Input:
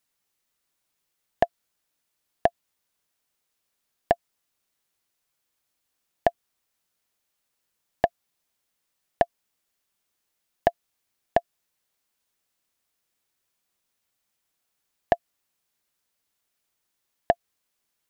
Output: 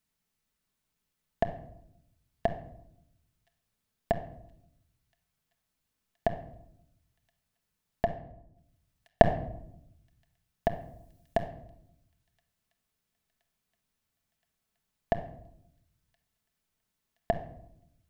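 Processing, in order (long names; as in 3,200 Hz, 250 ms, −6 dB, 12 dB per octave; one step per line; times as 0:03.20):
brickwall limiter −9.5 dBFS, peak gain reduction 4.5 dB
bass and treble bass +11 dB, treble −2 dB
delay with a high-pass on its return 1,022 ms, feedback 69%, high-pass 3,600 Hz, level −24 dB
0:08.05–0:09.22: transient designer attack +11 dB, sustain −11 dB
0:10.68–0:11.37: high-shelf EQ 4,500 Hz +9.5 dB
rectangular room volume 1,900 cubic metres, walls furnished, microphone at 1.5 metres
level −4.5 dB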